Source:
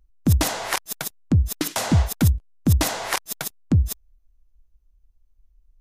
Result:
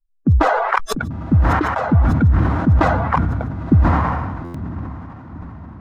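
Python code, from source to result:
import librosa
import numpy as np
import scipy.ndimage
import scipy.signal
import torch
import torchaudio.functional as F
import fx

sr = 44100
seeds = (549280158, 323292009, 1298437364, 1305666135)

p1 = fx.bin_expand(x, sr, power=2.0)
p2 = fx.filter_sweep_lowpass(p1, sr, from_hz=1300.0, to_hz=220.0, start_s=3.05, end_s=4.08, q=2.5)
p3 = p2 + fx.echo_diffused(p2, sr, ms=943, feedback_pct=51, wet_db=-12, dry=0)
p4 = fx.buffer_glitch(p3, sr, at_s=(4.44,), block=512, repeats=8)
p5 = fx.sustainer(p4, sr, db_per_s=29.0)
y = p5 * 10.0 ** (5.0 / 20.0)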